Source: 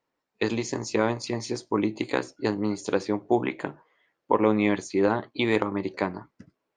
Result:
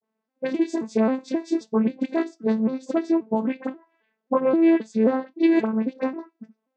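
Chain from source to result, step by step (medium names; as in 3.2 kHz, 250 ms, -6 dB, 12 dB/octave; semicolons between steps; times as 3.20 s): vocoder on a broken chord minor triad, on A3, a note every 266 ms; phase dispersion highs, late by 42 ms, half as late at 1.4 kHz; trim +4.5 dB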